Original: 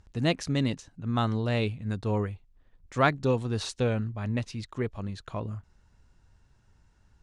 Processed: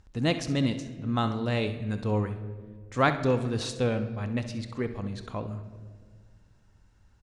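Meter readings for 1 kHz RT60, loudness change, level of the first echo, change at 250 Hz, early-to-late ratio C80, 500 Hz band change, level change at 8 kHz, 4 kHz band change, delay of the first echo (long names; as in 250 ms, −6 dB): 1.4 s, +0.5 dB, −14.5 dB, +1.0 dB, 13.5 dB, +0.5 dB, +0.5 dB, +0.5 dB, 66 ms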